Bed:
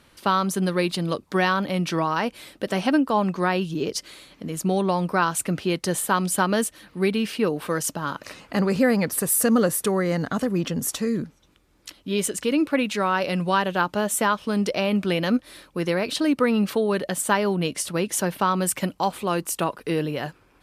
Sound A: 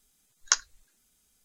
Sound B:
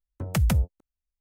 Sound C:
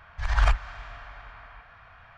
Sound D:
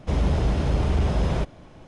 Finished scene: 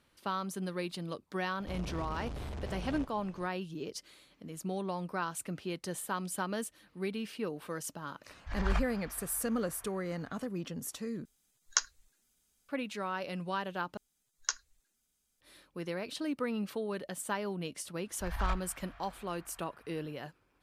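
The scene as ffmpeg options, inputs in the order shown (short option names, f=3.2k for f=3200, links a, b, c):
-filter_complex "[3:a]asplit=2[a][b];[1:a]asplit=2[c][d];[0:a]volume=-14dB[e];[4:a]asoftclip=type=tanh:threshold=-30.5dB[f];[e]asplit=3[g][h][i];[g]atrim=end=11.254[j];[c]atrim=end=1.44,asetpts=PTS-STARTPTS,volume=-5.5dB[k];[h]atrim=start=12.686:end=13.974[l];[d]atrim=end=1.44,asetpts=PTS-STARTPTS,volume=-10dB[m];[i]atrim=start=15.406[n];[f]atrim=end=1.87,asetpts=PTS-STARTPTS,volume=-8dB,afade=t=in:d=0.004:c=hsin,afade=t=out:st=1.866:d=0.004:c=hsin,adelay=1600[o];[a]atrim=end=2.17,asetpts=PTS-STARTPTS,volume=-10dB,afade=t=in:d=0.004:c=hsin,afade=t=out:st=2.166:d=0.004:c=hsin,adelay=8280[p];[b]atrim=end=2.17,asetpts=PTS-STARTPTS,volume=-12.5dB,afade=t=in:d=0.1,afade=t=out:st=2.07:d=0.1,adelay=18020[q];[j][k]acrossfade=d=0.004:c1=hsin:c2=hsin[r];[r][l]acrossfade=d=0.004:c1=hsin:c2=hsin[s];[s][m]acrossfade=d=0.004:c1=hsin:c2=hsin[t];[t][n]acrossfade=d=0.004:c1=hsin:c2=hsin[u];[u][o][p][q]amix=inputs=4:normalize=0"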